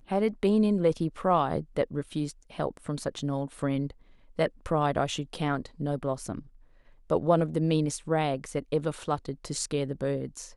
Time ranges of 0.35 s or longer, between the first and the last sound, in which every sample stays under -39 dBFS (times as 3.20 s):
3.91–4.39 s
6.39–7.10 s